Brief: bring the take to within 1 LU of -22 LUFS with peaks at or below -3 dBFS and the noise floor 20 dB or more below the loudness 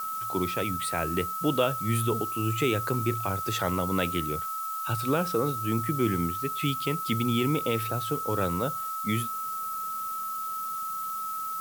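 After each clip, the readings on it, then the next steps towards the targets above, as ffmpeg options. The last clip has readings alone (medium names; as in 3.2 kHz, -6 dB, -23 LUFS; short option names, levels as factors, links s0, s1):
steady tone 1.3 kHz; tone level -31 dBFS; noise floor -33 dBFS; noise floor target -49 dBFS; loudness -28.5 LUFS; peak level -11.0 dBFS; loudness target -22.0 LUFS
-> -af "bandreject=f=1300:w=30"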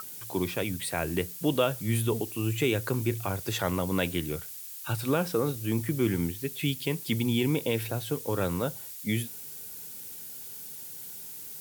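steady tone not found; noise floor -42 dBFS; noise floor target -51 dBFS
-> -af "afftdn=nr=9:nf=-42"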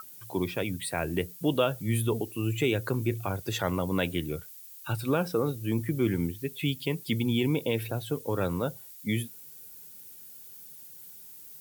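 noise floor -48 dBFS; noise floor target -50 dBFS
-> -af "afftdn=nr=6:nf=-48"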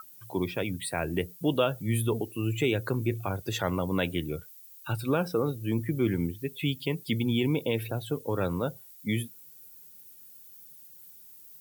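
noise floor -51 dBFS; loudness -30.0 LUFS; peak level -12.0 dBFS; loudness target -22.0 LUFS
-> -af "volume=2.51"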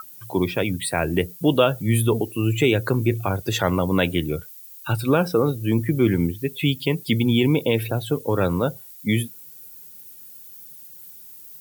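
loudness -22.0 LUFS; peak level -4.0 dBFS; noise floor -43 dBFS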